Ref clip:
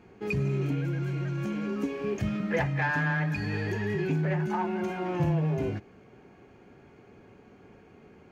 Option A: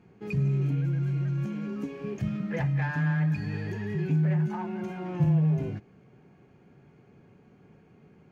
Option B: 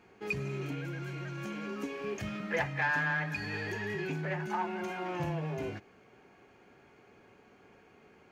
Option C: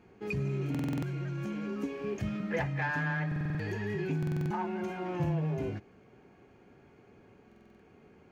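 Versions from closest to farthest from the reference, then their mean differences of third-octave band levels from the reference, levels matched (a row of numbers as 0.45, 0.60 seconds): C, B, A; 1.0, 4.0, 5.0 decibels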